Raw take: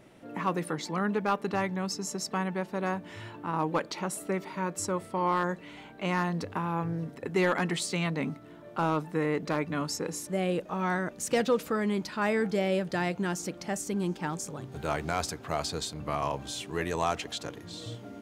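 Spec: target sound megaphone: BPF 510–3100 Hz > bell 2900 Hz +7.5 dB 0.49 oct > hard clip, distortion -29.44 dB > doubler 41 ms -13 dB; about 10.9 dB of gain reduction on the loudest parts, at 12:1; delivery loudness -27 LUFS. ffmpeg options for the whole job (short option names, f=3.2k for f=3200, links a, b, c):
-filter_complex "[0:a]acompressor=threshold=-32dB:ratio=12,highpass=510,lowpass=3.1k,equalizer=f=2.9k:t=o:w=0.49:g=7.5,asoftclip=type=hard:threshold=-27dB,asplit=2[a][b];[b]adelay=41,volume=-13dB[c];[a][c]amix=inputs=2:normalize=0,volume=14dB"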